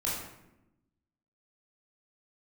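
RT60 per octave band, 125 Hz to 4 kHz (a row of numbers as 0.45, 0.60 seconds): 1.3, 1.3, 1.0, 0.80, 0.75, 0.55 seconds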